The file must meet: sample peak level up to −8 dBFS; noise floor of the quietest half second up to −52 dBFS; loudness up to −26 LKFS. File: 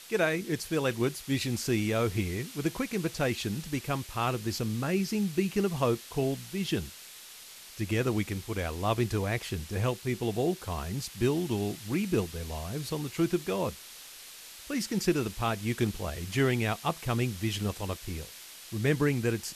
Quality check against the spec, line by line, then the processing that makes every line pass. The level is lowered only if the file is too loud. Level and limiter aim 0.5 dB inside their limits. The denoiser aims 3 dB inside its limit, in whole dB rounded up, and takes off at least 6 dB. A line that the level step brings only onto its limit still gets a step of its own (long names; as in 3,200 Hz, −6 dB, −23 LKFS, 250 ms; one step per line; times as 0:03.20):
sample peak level −13.5 dBFS: in spec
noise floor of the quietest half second −49 dBFS: out of spec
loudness −31.0 LKFS: in spec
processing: broadband denoise 6 dB, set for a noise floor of −49 dBFS